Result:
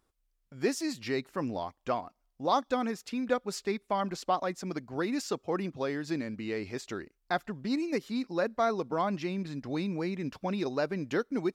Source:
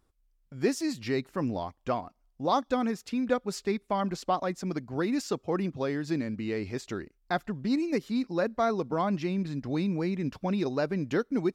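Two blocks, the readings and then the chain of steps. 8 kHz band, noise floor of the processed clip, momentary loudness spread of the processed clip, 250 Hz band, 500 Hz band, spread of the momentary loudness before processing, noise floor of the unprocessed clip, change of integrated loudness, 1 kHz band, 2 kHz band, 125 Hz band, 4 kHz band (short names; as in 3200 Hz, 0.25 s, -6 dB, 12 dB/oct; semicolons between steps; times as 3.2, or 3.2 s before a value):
0.0 dB, -77 dBFS, 6 LU, -3.5 dB, -1.5 dB, 5 LU, -71 dBFS, -2.5 dB, -0.5 dB, 0.0 dB, -5.0 dB, 0.0 dB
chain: low shelf 250 Hz -7.5 dB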